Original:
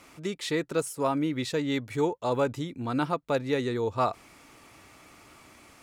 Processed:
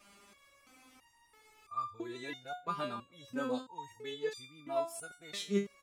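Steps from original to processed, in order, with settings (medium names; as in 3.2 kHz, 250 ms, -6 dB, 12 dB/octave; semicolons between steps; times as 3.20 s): reverse the whole clip; echo from a far wall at 31 m, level -23 dB; resonator arpeggio 3 Hz 200–1200 Hz; trim +6.5 dB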